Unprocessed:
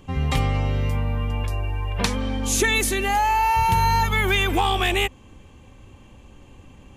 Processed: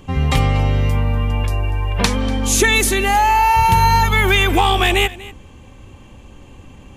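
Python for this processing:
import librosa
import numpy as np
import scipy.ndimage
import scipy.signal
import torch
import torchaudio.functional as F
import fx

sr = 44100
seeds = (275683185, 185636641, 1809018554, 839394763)

y = x + 10.0 ** (-19.0 / 20.0) * np.pad(x, (int(241 * sr / 1000.0), 0))[:len(x)]
y = F.gain(torch.from_numpy(y), 6.0).numpy()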